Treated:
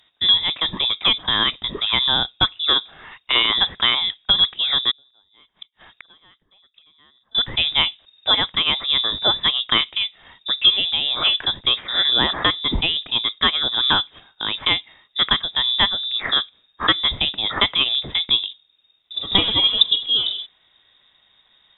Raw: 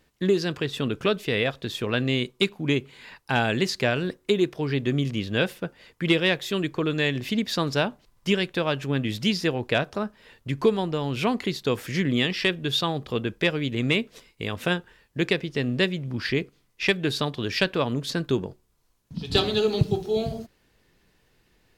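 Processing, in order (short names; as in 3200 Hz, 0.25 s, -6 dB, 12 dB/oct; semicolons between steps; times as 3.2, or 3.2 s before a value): 4.91–7.35 flipped gate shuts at -27 dBFS, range -36 dB; inverted band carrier 3700 Hz; gain +5.5 dB; MP3 64 kbps 48000 Hz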